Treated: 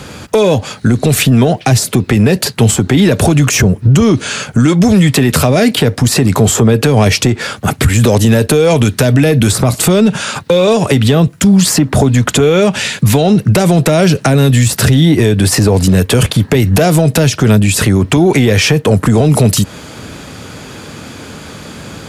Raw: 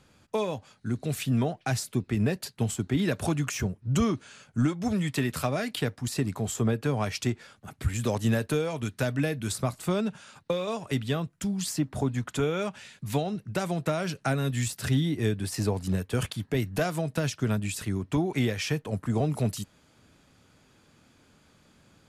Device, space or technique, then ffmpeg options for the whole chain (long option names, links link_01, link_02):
mastering chain: -filter_complex "[0:a]highpass=51,equalizer=frequency=460:width_type=o:width=0.38:gain=3,acrossover=split=780|1900[link_01][link_02][link_03];[link_01]acompressor=threshold=-26dB:ratio=4[link_04];[link_02]acompressor=threshold=-50dB:ratio=4[link_05];[link_03]acompressor=threshold=-41dB:ratio=4[link_06];[link_04][link_05][link_06]amix=inputs=3:normalize=0,acompressor=threshold=-32dB:ratio=2.5,asoftclip=type=tanh:threshold=-25dB,alimiter=level_in=32dB:limit=-1dB:release=50:level=0:latency=1,volume=-1dB"